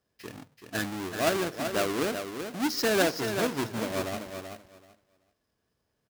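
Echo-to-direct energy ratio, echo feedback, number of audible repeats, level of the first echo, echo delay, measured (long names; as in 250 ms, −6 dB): −7.5 dB, 17%, 2, −7.5 dB, 382 ms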